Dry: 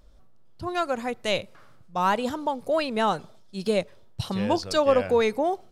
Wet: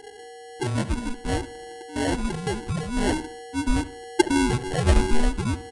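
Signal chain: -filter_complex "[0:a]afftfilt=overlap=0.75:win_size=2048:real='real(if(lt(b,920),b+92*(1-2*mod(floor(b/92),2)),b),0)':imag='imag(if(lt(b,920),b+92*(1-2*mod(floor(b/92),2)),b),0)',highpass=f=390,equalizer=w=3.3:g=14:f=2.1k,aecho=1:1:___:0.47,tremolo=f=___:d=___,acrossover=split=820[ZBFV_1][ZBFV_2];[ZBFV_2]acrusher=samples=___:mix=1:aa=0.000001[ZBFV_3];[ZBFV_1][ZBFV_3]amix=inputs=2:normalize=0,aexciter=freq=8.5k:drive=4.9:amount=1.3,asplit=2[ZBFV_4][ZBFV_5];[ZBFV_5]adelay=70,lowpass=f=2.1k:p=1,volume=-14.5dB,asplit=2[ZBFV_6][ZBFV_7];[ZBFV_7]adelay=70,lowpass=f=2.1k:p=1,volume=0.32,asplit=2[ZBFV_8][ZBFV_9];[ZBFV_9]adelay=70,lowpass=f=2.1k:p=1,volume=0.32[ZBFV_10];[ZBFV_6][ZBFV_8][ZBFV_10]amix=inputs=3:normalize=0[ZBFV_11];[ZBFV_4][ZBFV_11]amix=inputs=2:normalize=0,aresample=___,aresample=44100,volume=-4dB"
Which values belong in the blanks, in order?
2.9, 1.2, 0.33, 36, 22050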